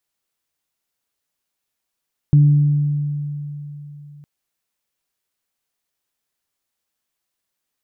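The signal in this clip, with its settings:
harmonic partials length 1.91 s, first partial 146 Hz, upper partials −18 dB, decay 3.53 s, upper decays 1.81 s, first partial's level −7 dB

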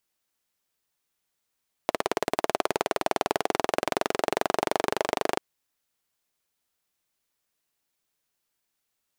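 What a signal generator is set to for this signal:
pulse-train model of a single-cylinder engine, changing speed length 3.49 s, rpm 2,100, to 3,000, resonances 420/640 Hz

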